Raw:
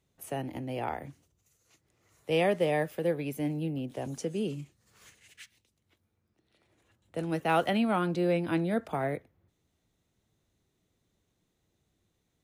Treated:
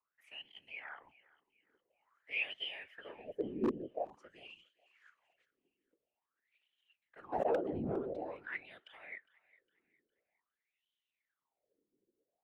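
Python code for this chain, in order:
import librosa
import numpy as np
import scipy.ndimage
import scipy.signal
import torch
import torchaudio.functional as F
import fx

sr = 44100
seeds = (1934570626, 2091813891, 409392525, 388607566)

y = fx.wah_lfo(x, sr, hz=0.48, low_hz=330.0, high_hz=3100.0, q=17.0)
y = fx.whisperise(y, sr, seeds[0])
y = 10.0 ** (-32.5 / 20.0) * (np.abs((y / 10.0 ** (-32.5 / 20.0) + 3.0) % 4.0 - 2.0) - 1.0)
y = fx.echo_thinned(y, sr, ms=408, feedback_pct=40, hz=920.0, wet_db=-20.5)
y = fx.pre_swell(y, sr, db_per_s=21.0, at=(7.32, 8.3), fade=0.02)
y = F.gain(torch.from_numpy(y), 8.0).numpy()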